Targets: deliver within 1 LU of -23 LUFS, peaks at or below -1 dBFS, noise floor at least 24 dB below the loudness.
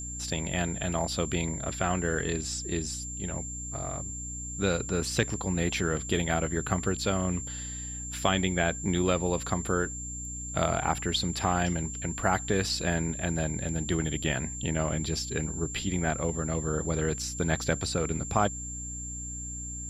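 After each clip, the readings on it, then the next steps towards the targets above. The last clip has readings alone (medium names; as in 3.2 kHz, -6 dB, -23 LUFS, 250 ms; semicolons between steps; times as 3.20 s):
hum 60 Hz; highest harmonic 300 Hz; hum level -39 dBFS; steady tone 7.3 kHz; tone level -37 dBFS; loudness -30.0 LUFS; peak level -10.0 dBFS; loudness target -23.0 LUFS
-> hum notches 60/120/180/240/300 Hz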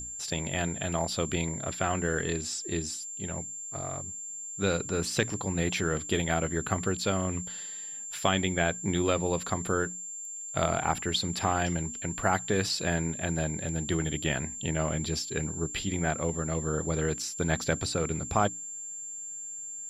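hum not found; steady tone 7.3 kHz; tone level -37 dBFS
-> band-stop 7.3 kHz, Q 30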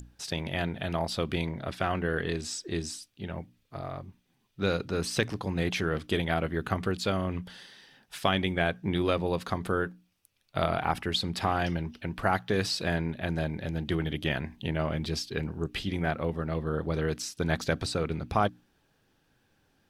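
steady tone not found; loudness -31.0 LUFS; peak level -10.5 dBFS; loudness target -23.0 LUFS
-> trim +8 dB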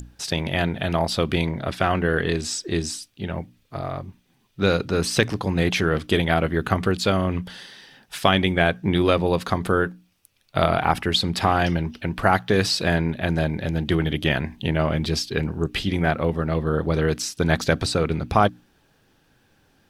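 loudness -23.0 LUFS; peak level -2.5 dBFS; noise floor -63 dBFS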